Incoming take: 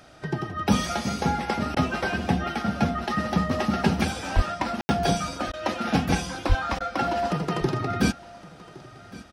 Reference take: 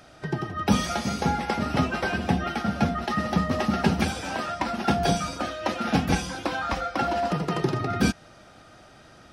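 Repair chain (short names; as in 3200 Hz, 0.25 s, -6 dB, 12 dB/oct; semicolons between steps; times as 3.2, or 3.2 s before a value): 4.35–4.47 HPF 140 Hz 24 dB/oct; 6.48–6.6 HPF 140 Hz 24 dB/oct; room tone fill 4.81–4.89; interpolate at 1.75/5.52/6.79, 13 ms; inverse comb 1.114 s -20 dB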